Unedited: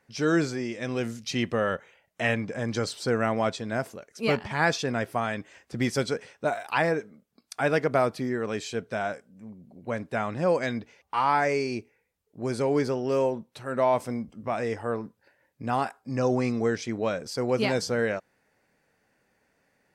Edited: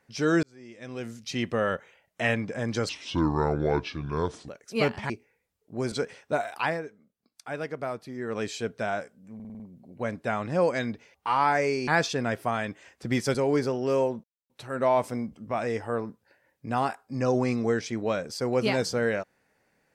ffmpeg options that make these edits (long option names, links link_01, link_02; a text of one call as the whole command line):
ffmpeg -i in.wav -filter_complex "[0:a]asplit=16[link_01][link_02][link_03][link_04][link_05][link_06][link_07][link_08][link_09][link_10][link_11][link_12][link_13][link_14][link_15][link_16];[link_01]atrim=end=0.43,asetpts=PTS-STARTPTS,afade=type=out:start_time=0.426:duration=0.004:curve=hsin[link_17];[link_02]atrim=start=0.43:end=2.894,asetpts=PTS-STARTPTS,afade=type=in:duration=1.22[link_18];[link_03]atrim=start=2.89:end=3.96,asetpts=PTS-STARTPTS,asetrate=29547,aresample=44100,atrim=end_sample=70428,asetpts=PTS-STARTPTS[link_19];[link_04]atrim=start=3.956:end=4.572[link_20];[link_05]atrim=start=11.748:end=12.572[link_21];[link_06]atrim=start=6.038:end=6.93,asetpts=PTS-STARTPTS,afade=type=out:start_time=0.652:duration=0.24:silence=0.334965[link_22];[link_07]atrim=start=6.93:end=8.26,asetpts=PTS-STARTPTS,volume=-9.5dB[link_23];[link_08]atrim=start=8.26:end=9.522,asetpts=PTS-STARTPTS,afade=type=in:duration=0.24:silence=0.334965[link_24];[link_09]atrim=start=9.468:end=9.522[link_25];[link_10]atrim=start=9.468:end=9.522[link_26];[link_11]atrim=start=9.468:end=9.522[link_27];[link_12]atrim=start=9.468:end=9.522[link_28];[link_13]atrim=start=9.468:end=11.752[link_29];[link_14]atrim=start=4.568:end=6.042[link_30];[link_15]atrim=start=12.568:end=13.46,asetpts=PTS-STARTPTS,afade=type=out:start_time=0.888:duration=0.004:curve=hsin,apad=pad_dur=0.26[link_31];[link_16]atrim=start=13.46,asetpts=PTS-STARTPTS,afade=type=in:duration=0.004:curve=hsin[link_32];[link_17][link_18]concat=n=2:v=0:a=1[link_33];[link_33][link_19]acrossfade=duration=0.004:curve1=hsin:curve2=hsin[link_34];[link_34][link_20]acrossfade=duration=0.004:curve1=hsin:curve2=hsin[link_35];[link_35][link_21]acrossfade=duration=0.004:curve1=hsin:curve2=hsin[link_36];[link_22][link_23][link_24]concat=n=3:v=0:a=1[link_37];[link_36][link_37]acrossfade=duration=0.004:curve1=hsin:curve2=hsin[link_38];[link_38][link_25]acrossfade=duration=0.004:curve1=hsin:curve2=hsin[link_39];[link_39][link_26]acrossfade=duration=0.004:curve1=hsin:curve2=hsin[link_40];[link_40][link_27]acrossfade=duration=0.004:curve1=hsin:curve2=hsin[link_41];[link_41][link_28]acrossfade=duration=0.004:curve1=hsin:curve2=hsin[link_42];[link_42][link_29]acrossfade=duration=0.004:curve1=hsin:curve2=hsin[link_43];[link_43][link_30]acrossfade=duration=0.004:curve1=hsin:curve2=hsin[link_44];[link_31][link_32]concat=n=2:v=0:a=1[link_45];[link_44][link_45]acrossfade=duration=0.004:curve1=hsin:curve2=hsin" out.wav